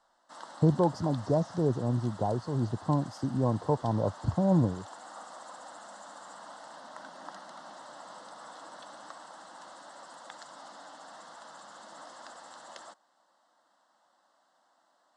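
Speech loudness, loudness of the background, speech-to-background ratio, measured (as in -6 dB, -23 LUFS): -29.0 LUFS, -47.5 LUFS, 18.5 dB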